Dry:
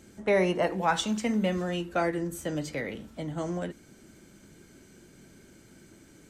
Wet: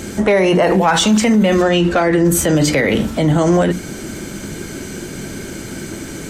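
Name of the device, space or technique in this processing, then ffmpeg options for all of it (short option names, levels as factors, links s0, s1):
loud club master: -filter_complex "[0:a]bandreject=f=60:t=h:w=6,bandreject=f=120:t=h:w=6,bandreject=f=180:t=h:w=6,bandreject=f=240:t=h:w=6,bandreject=f=300:t=h:w=6,asettb=1/sr,asplit=3[s0][s1][s2];[s0]atrim=end=1.624[s3];[s1]atrim=start=1.62:end=2.25,asetpts=PTS-STARTPTS,afade=t=in:d=0.004:c=qsin,afade=t=out:st=0.626:d=0.004:c=qsin,lowpass=6900[s4];[s2]atrim=start=2.246[s5];[s3][s4]acrossfade=d=0.004:c1=hsin:c2=qsin[s6];[s6][s5]acrossfade=d=0.004:c1=qsin:c2=hsin,acompressor=threshold=0.0398:ratio=2.5,asoftclip=type=hard:threshold=0.0794,alimiter=level_in=37.6:limit=0.891:release=50:level=0:latency=1,volume=0.562"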